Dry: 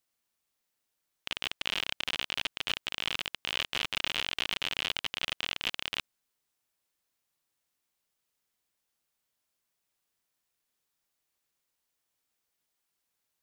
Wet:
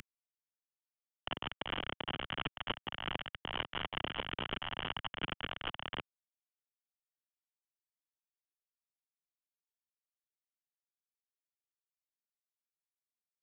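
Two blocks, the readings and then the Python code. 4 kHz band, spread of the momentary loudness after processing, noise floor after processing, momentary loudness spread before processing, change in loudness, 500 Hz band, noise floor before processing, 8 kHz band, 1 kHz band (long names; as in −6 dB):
−8.5 dB, 3 LU, below −85 dBFS, 5 LU, −7.5 dB, +1.5 dB, −83 dBFS, below −30 dB, +1.0 dB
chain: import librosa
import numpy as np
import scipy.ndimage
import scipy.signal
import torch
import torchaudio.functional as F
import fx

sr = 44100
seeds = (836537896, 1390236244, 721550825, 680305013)

y = fx.cvsd(x, sr, bps=16000)
y = fx.band_squash(y, sr, depth_pct=70)
y = y * librosa.db_to_amplitude(14.5)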